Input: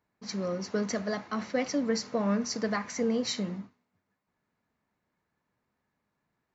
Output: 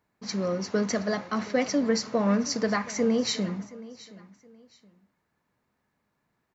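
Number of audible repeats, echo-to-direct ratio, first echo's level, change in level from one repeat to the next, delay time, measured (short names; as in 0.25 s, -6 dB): 2, -18.5 dB, -19.0 dB, -11.0 dB, 0.722 s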